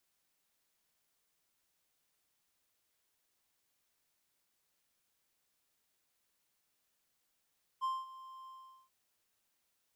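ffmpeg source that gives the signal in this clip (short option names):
-f lavfi -i "aevalsrc='0.0355*(1-4*abs(mod(1050*t+0.25,1)-0.5))':d=1.085:s=44100,afade=t=in:d=0.031,afade=t=out:st=0.031:d=0.213:silence=0.133,afade=t=out:st=0.66:d=0.425"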